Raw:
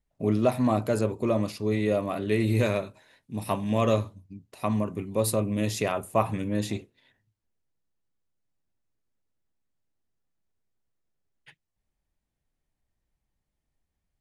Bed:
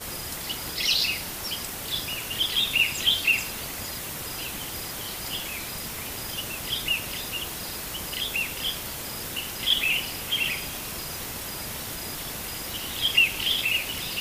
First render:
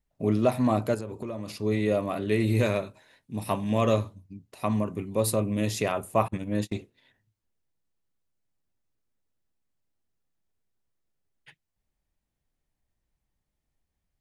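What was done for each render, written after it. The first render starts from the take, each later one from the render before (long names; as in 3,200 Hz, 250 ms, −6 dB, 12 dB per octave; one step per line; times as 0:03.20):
0:00.94–0:01.52: downward compressor 12 to 1, threshold −30 dBFS
0:06.28–0:06.72: noise gate −31 dBFS, range −34 dB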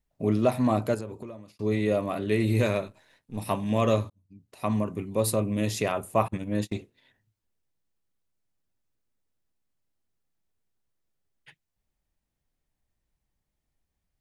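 0:01.02–0:01.59: fade out
0:02.87–0:03.38: gain on one half-wave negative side −7 dB
0:04.10–0:04.70: fade in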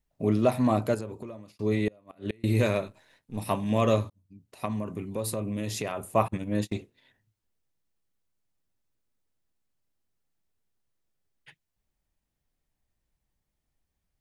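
0:01.87–0:02.44: gate with flip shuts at −19 dBFS, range −31 dB
0:04.65–0:06.15: downward compressor 2.5 to 1, threshold −29 dBFS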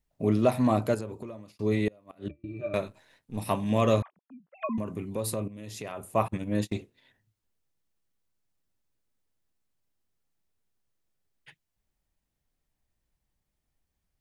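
0:02.28–0:02.74: resonances in every octave D, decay 0.13 s
0:04.02–0:04.78: three sine waves on the formant tracks
0:05.48–0:06.43: fade in, from −14.5 dB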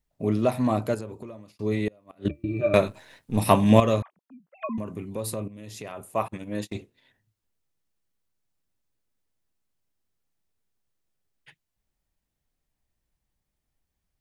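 0:02.25–0:03.80: clip gain +10 dB
0:06.03–0:06.75: low-shelf EQ 210 Hz −8 dB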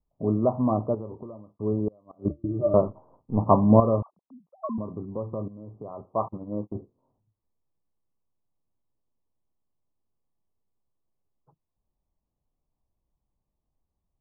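Butterworth low-pass 1,200 Hz 96 dB per octave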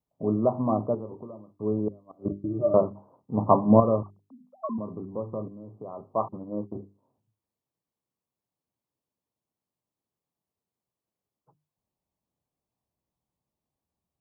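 high-pass filter 110 Hz
mains-hum notches 50/100/150/200/250/300/350/400 Hz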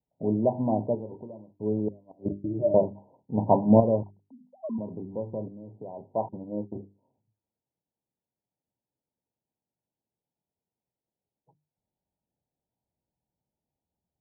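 Chebyshev low-pass filter 960 Hz, order 8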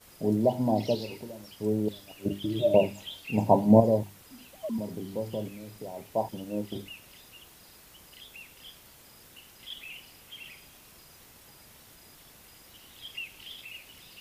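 mix in bed −19.5 dB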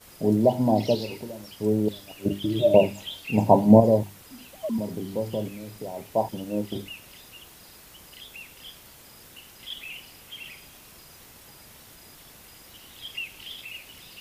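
level +4.5 dB
brickwall limiter −3 dBFS, peak gain reduction 2 dB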